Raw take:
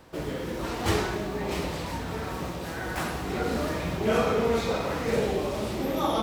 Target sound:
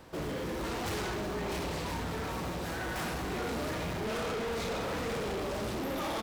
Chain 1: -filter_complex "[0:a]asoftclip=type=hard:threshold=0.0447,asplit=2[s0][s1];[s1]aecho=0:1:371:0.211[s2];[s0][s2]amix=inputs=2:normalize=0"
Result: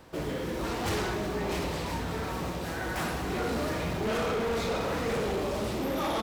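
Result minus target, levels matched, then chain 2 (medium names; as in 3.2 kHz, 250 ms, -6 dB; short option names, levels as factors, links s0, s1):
hard clipper: distortion -4 dB
-filter_complex "[0:a]asoftclip=type=hard:threshold=0.0224,asplit=2[s0][s1];[s1]aecho=0:1:371:0.211[s2];[s0][s2]amix=inputs=2:normalize=0"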